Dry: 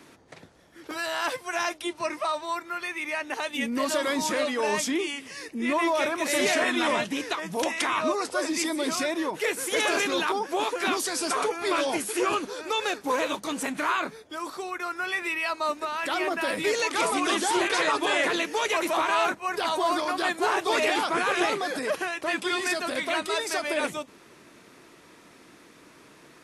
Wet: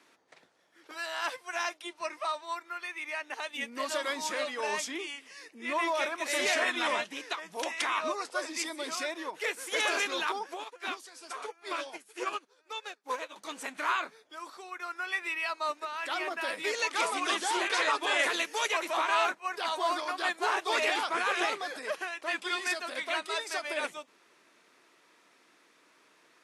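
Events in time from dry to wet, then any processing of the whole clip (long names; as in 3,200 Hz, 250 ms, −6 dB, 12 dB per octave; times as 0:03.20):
0:10.54–0:13.36: expander for the loud parts 2.5 to 1, over −38 dBFS
0:18.19–0:18.69: high-shelf EQ 8,000 Hz +11.5 dB
whole clip: meter weighting curve A; expander for the loud parts 1.5 to 1, over −36 dBFS; level −2.5 dB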